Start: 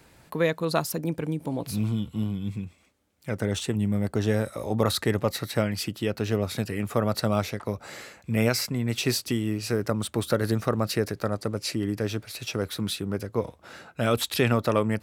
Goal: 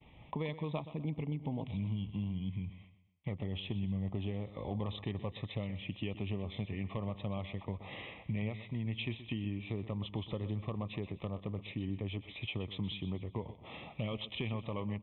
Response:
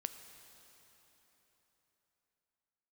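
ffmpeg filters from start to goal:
-af "agate=range=-33dB:threshold=-51dB:ratio=3:detection=peak,equalizer=f=460:t=o:w=1.5:g=-8,acompressor=threshold=-41dB:ratio=4,aresample=8000,volume=31dB,asoftclip=hard,volume=-31dB,aresample=44100,asetrate=41625,aresample=44100,atempo=1.05946,asuperstop=centerf=1500:order=4:qfactor=1.4,aecho=1:1:125|250|375|500:0.2|0.0758|0.0288|0.0109,volume=5dB"

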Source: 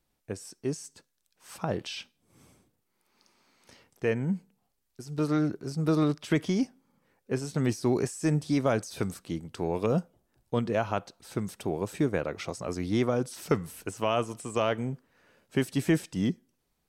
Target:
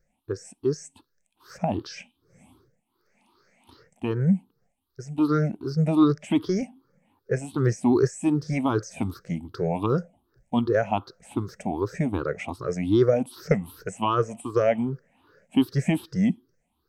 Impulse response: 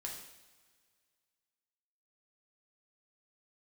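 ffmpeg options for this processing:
-af "afftfilt=real='re*pow(10,22/40*sin(2*PI*(0.56*log(max(b,1)*sr/1024/100)/log(2)-(2.6)*(pts-256)/sr)))':imag='im*pow(10,22/40*sin(2*PI*(0.56*log(max(b,1)*sr/1024/100)/log(2)-(2.6)*(pts-256)/sr)))':win_size=1024:overlap=0.75,highshelf=f=2.7k:g=-8.5"

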